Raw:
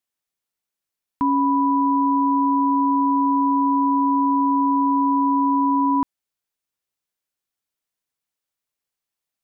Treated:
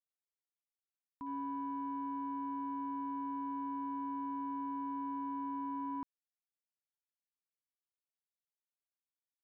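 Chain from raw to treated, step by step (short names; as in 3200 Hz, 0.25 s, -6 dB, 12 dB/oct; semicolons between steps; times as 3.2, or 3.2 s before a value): gate -13 dBFS, range -42 dB; gain +18 dB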